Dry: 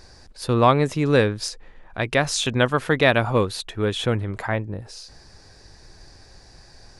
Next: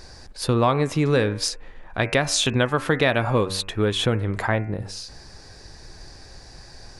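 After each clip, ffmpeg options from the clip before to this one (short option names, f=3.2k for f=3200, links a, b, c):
-af "bandreject=f=95.45:t=h:w=4,bandreject=f=190.9:t=h:w=4,bandreject=f=286.35:t=h:w=4,bandreject=f=381.8:t=h:w=4,bandreject=f=477.25:t=h:w=4,bandreject=f=572.7:t=h:w=4,bandreject=f=668.15:t=h:w=4,bandreject=f=763.6:t=h:w=4,bandreject=f=859.05:t=h:w=4,bandreject=f=954.5:t=h:w=4,bandreject=f=1.04995k:t=h:w=4,bandreject=f=1.1454k:t=h:w=4,bandreject=f=1.24085k:t=h:w=4,bandreject=f=1.3363k:t=h:w=4,bandreject=f=1.43175k:t=h:w=4,bandreject=f=1.5272k:t=h:w=4,bandreject=f=1.62265k:t=h:w=4,bandreject=f=1.7181k:t=h:w=4,bandreject=f=1.81355k:t=h:w=4,bandreject=f=1.909k:t=h:w=4,bandreject=f=2.00445k:t=h:w=4,bandreject=f=2.0999k:t=h:w=4,bandreject=f=2.19535k:t=h:w=4,bandreject=f=2.2908k:t=h:w=4,bandreject=f=2.38625k:t=h:w=4,bandreject=f=2.4817k:t=h:w=4,bandreject=f=2.57715k:t=h:w=4,bandreject=f=2.6726k:t=h:w=4,acompressor=threshold=-22dB:ratio=3,volume=4.5dB"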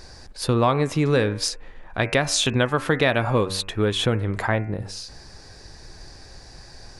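-af anull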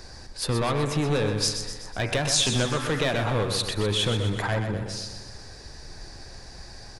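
-filter_complex "[0:a]acrossover=split=100|3400[a][b][c];[b]asoftclip=type=tanh:threshold=-22dB[d];[a][d][c]amix=inputs=3:normalize=0,aecho=1:1:125|250|375|500|625|750|875:0.398|0.219|0.12|0.0662|0.0364|0.02|0.011"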